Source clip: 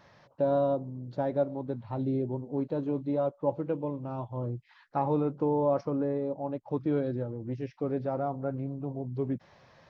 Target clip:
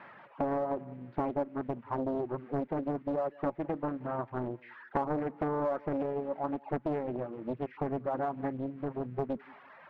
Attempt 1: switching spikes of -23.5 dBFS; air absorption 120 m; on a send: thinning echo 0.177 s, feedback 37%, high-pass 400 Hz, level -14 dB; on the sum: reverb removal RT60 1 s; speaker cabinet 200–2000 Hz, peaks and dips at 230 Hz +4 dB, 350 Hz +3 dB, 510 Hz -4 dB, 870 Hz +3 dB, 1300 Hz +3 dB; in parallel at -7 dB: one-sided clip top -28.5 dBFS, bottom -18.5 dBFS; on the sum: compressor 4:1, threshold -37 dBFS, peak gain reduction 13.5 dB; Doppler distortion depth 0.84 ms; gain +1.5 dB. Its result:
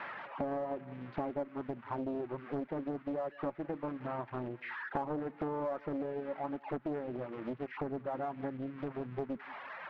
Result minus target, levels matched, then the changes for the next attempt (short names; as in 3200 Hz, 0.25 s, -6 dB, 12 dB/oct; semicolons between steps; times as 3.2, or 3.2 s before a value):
switching spikes: distortion +10 dB; compressor: peak gain reduction +5 dB
change: switching spikes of -34 dBFS; change: compressor 4:1, threshold -30.5 dBFS, peak gain reduction 9 dB